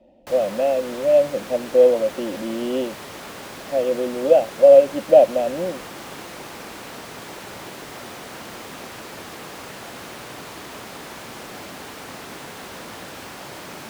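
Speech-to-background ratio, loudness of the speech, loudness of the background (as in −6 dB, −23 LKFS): 17.5 dB, −18.5 LKFS, −36.0 LKFS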